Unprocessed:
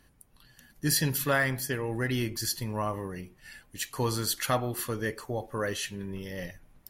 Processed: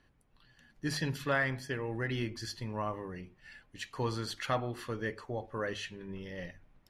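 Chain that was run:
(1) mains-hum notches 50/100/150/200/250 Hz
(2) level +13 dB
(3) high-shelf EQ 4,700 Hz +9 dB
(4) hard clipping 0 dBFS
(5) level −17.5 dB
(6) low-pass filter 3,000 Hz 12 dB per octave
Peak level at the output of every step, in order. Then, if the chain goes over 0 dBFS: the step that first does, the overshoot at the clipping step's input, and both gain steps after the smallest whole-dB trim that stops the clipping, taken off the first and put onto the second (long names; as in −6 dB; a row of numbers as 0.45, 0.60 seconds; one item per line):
−14.0, −1.0, +6.5, 0.0, −17.5, −18.5 dBFS
step 3, 6.5 dB
step 2 +6 dB, step 5 −10.5 dB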